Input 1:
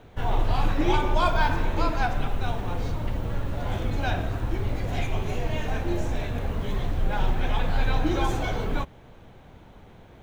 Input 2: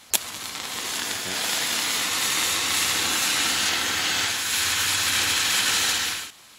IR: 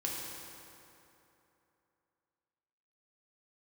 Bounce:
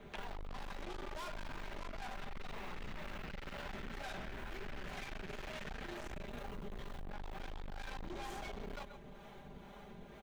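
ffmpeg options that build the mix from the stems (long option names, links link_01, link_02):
-filter_complex "[0:a]aecho=1:1:5:0.88,acrossover=split=470[link_01][link_02];[link_01]aeval=exprs='val(0)*(1-0.5/2+0.5/2*cos(2*PI*2.1*n/s))':channel_layout=same[link_03];[link_02]aeval=exprs='val(0)*(1-0.5/2-0.5/2*cos(2*PI*2.1*n/s))':channel_layout=same[link_04];[link_03][link_04]amix=inputs=2:normalize=0,volume=-1dB,asplit=2[link_05][link_06];[link_06]volume=-19dB[link_07];[1:a]lowpass=frequency=2400:width=0.5412,lowpass=frequency=2400:width=1.3066,volume=-9.5dB[link_08];[link_07]aecho=0:1:131:1[link_09];[link_05][link_08][link_09]amix=inputs=3:normalize=0,lowshelf=frequency=120:gain=-5,aeval=exprs='(tanh(50.1*val(0)+0.45)-tanh(0.45))/50.1':channel_layout=same,acompressor=threshold=-42dB:ratio=6"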